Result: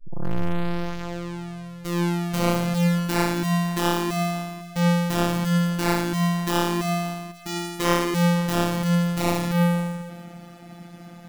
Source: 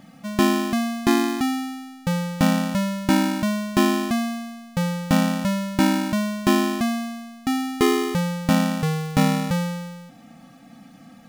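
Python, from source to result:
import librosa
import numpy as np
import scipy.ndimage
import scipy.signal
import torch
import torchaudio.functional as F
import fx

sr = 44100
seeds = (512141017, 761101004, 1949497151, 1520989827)

p1 = fx.tape_start_head(x, sr, length_s=2.98)
p2 = fx.sample_hold(p1, sr, seeds[0], rate_hz=11000.0, jitter_pct=0)
p3 = p1 + (p2 * 10.0 ** (-11.5 / 20.0))
p4 = fx.vibrato(p3, sr, rate_hz=0.32, depth_cents=20.0)
p5 = 10.0 ** (-21.5 / 20.0) * (np.abs((p4 / 10.0 ** (-21.5 / 20.0) + 3.0) % 4.0 - 2.0) - 1.0)
p6 = p5 + fx.echo_single(p5, sr, ms=504, db=-21.0, dry=0)
p7 = fx.robotise(p6, sr, hz=173.0)
y = p7 * 10.0 ** (5.0 / 20.0)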